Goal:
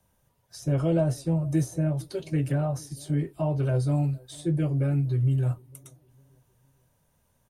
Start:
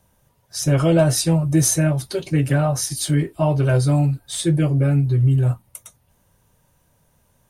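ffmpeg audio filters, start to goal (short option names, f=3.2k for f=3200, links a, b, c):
-filter_complex "[0:a]acrossover=split=130|840[a][b][c];[b]aecho=1:1:457|914|1371:0.0708|0.0297|0.0125[d];[c]acompressor=threshold=-36dB:ratio=5[e];[a][d][e]amix=inputs=3:normalize=0,volume=-7.5dB"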